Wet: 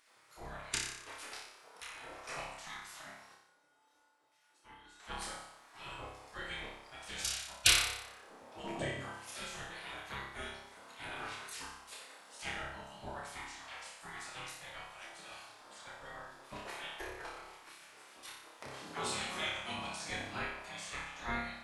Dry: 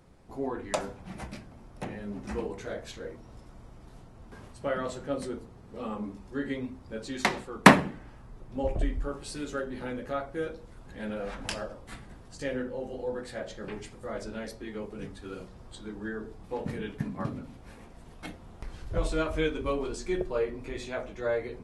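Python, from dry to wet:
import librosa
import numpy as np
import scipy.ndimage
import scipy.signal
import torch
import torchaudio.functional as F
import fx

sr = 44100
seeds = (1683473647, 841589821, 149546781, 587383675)

y = fx.spec_gate(x, sr, threshold_db=-20, keep='weak')
y = fx.comb_fb(y, sr, f0_hz=290.0, decay_s=0.38, harmonics='odd', damping=0.0, mix_pct=90, at=(3.34, 5.0))
y = fx.room_flutter(y, sr, wall_m=5.1, rt60_s=0.72)
y = y * librosa.db_to_amplitude(2.0)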